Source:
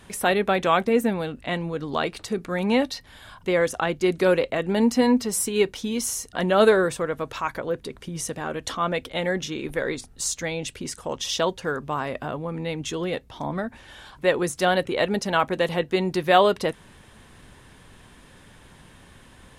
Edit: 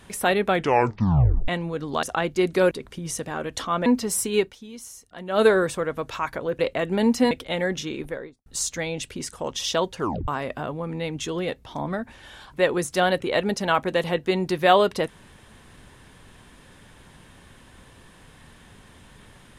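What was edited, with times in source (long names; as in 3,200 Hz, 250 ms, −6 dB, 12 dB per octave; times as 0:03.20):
0:00.50: tape stop 0.98 s
0:02.03–0:03.68: remove
0:04.36–0:05.08: swap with 0:07.81–0:08.96
0:05.59–0:06.68: duck −13.5 dB, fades 0.19 s
0:09.53–0:10.11: fade out and dull
0:11.64: tape stop 0.29 s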